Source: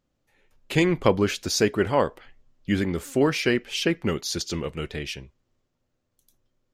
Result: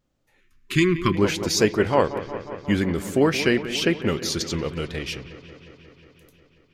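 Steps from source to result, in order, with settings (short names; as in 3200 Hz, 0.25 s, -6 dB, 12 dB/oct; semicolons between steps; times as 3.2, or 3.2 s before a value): dark delay 0.18 s, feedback 75%, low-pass 2600 Hz, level -13 dB; vibrato 1.3 Hz 30 cents; spectral gain 0.4–1.16, 400–1000 Hz -25 dB; gain +2 dB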